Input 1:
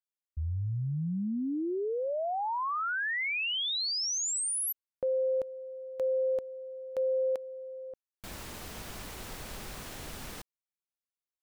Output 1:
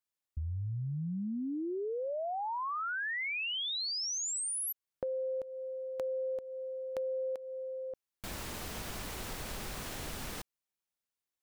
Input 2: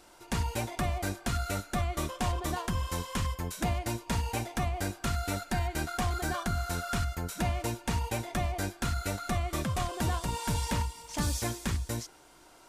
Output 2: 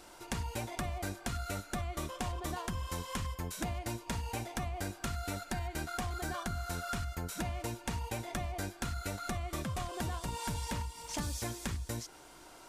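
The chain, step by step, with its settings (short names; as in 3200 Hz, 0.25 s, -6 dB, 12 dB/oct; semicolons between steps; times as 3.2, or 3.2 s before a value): compressor 4:1, threshold -38 dBFS; gain +2.5 dB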